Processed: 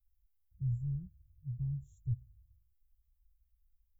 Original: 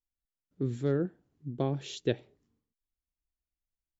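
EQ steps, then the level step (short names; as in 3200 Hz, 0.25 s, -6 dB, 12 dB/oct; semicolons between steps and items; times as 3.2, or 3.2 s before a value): inverse Chebyshev band-stop 250–5000 Hz, stop band 60 dB; tilt shelf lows +5.5 dB, about 1400 Hz; +15.5 dB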